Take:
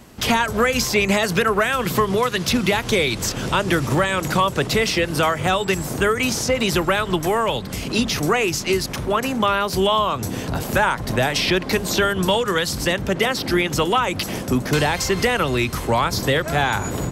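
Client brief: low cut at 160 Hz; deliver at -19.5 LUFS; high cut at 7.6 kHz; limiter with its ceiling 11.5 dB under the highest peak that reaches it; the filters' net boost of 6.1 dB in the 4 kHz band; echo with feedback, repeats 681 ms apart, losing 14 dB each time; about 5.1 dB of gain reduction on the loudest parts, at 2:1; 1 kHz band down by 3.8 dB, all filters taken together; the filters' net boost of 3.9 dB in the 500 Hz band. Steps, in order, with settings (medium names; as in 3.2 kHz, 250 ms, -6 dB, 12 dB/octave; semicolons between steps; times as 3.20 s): high-pass 160 Hz; low-pass 7.6 kHz; peaking EQ 500 Hz +6.5 dB; peaking EQ 1 kHz -7.5 dB; peaking EQ 4 kHz +8.5 dB; compression 2:1, threshold -21 dBFS; peak limiter -18 dBFS; feedback delay 681 ms, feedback 20%, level -14 dB; trim +6.5 dB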